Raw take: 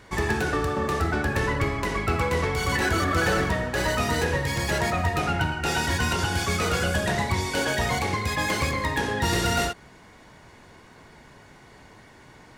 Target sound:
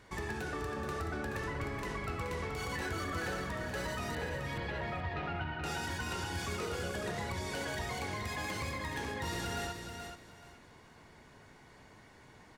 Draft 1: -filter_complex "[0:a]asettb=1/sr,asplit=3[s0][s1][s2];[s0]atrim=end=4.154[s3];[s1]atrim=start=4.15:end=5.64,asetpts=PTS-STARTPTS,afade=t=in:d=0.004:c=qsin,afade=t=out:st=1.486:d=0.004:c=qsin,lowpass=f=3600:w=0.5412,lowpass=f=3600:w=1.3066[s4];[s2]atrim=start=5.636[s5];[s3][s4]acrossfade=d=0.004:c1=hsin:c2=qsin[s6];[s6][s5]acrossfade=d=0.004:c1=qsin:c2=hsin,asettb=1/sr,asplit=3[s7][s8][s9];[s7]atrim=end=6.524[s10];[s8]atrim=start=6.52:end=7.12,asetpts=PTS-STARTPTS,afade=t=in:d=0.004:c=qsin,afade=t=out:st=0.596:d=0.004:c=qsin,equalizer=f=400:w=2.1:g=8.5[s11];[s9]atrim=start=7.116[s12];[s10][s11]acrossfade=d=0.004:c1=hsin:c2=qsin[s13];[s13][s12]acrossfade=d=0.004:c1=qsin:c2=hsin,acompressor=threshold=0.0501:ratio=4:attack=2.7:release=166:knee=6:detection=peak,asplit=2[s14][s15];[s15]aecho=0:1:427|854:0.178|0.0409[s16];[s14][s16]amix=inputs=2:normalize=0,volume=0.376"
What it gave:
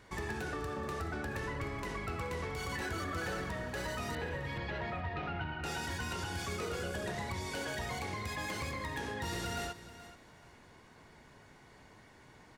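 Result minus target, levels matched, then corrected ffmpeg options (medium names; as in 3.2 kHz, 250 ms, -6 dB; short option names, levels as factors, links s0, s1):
echo-to-direct -8 dB
-filter_complex "[0:a]asettb=1/sr,asplit=3[s0][s1][s2];[s0]atrim=end=4.154[s3];[s1]atrim=start=4.15:end=5.64,asetpts=PTS-STARTPTS,afade=t=in:d=0.004:c=qsin,afade=t=out:st=1.486:d=0.004:c=qsin,lowpass=f=3600:w=0.5412,lowpass=f=3600:w=1.3066[s4];[s2]atrim=start=5.636[s5];[s3][s4]acrossfade=d=0.004:c1=hsin:c2=qsin[s6];[s6][s5]acrossfade=d=0.004:c1=qsin:c2=hsin,asettb=1/sr,asplit=3[s7][s8][s9];[s7]atrim=end=6.524[s10];[s8]atrim=start=6.52:end=7.12,asetpts=PTS-STARTPTS,afade=t=in:d=0.004:c=qsin,afade=t=out:st=0.596:d=0.004:c=qsin,equalizer=f=400:w=2.1:g=8.5[s11];[s9]atrim=start=7.116[s12];[s10][s11]acrossfade=d=0.004:c1=hsin:c2=qsin[s13];[s13][s12]acrossfade=d=0.004:c1=qsin:c2=hsin,acompressor=threshold=0.0501:ratio=4:attack=2.7:release=166:knee=6:detection=peak,asplit=2[s14][s15];[s15]aecho=0:1:427|854|1281:0.447|0.103|0.0236[s16];[s14][s16]amix=inputs=2:normalize=0,volume=0.376"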